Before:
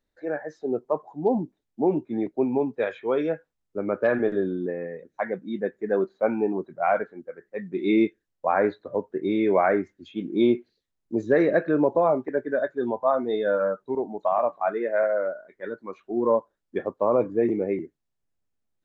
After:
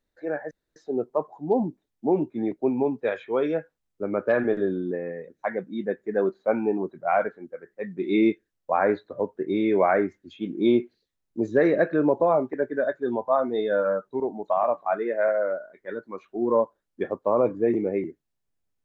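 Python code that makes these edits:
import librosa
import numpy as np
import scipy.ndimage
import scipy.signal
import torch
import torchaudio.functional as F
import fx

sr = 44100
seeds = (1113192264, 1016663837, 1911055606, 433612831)

y = fx.edit(x, sr, fx.insert_room_tone(at_s=0.51, length_s=0.25), tone=tone)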